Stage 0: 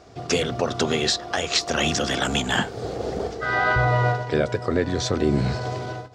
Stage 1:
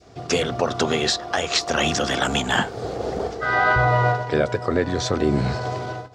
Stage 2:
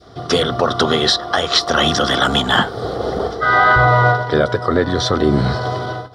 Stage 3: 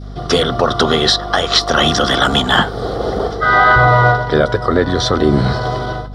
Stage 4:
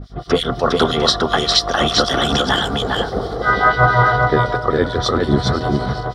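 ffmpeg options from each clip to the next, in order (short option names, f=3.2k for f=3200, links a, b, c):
-af "adynamicequalizer=threshold=0.0224:dfrequency=970:dqfactor=0.82:tfrequency=970:tqfactor=0.82:attack=5:release=100:ratio=0.375:range=2:mode=boostabove:tftype=bell"
-af "superequalizer=10b=1.78:12b=0.398:13b=1.58:15b=0.316,apsyclip=10dB,volume=-4.5dB"
-af "aeval=exprs='val(0)+0.0316*(sin(2*PI*50*n/s)+sin(2*PI*2*50*n/s)/2+sin(2*PI*3*50*n/s)/3+sin(2*PI*4*50*n/s)/4+sin(2*PI*5*50*n/s)/5)':c=same,volume=2dB"
-filter_complex "[0:a]acrossover=split=2400[a][b];[a]aeval=exprs='val(0)*(1-1/2+1/2*cos(2*PI*6*n/s))':c=same[c];[b]aeval=exprs='val(0)*(1-1/2-1/2*cos(2*PI*6*n/s))':c=same[d];[c][d]amix=inputs=2:normalize=0,asplit=2[e][f];[f]aecho=0:1:406:0.708[g];[e][g]amix=inputs=2:normalize=0"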